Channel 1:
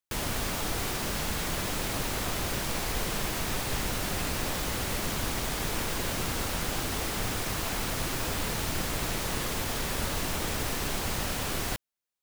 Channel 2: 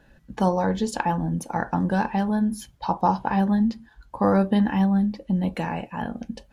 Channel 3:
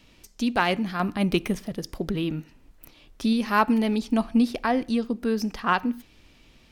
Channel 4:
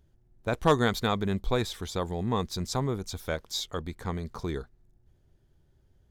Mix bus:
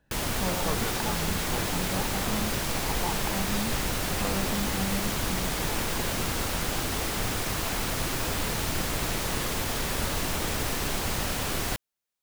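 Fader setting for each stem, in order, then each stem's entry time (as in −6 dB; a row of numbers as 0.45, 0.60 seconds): +2.0 dB, −13.0 dB, muted, −11.0 dB; 0.00 s, 0.00 s, muted, 0.00 s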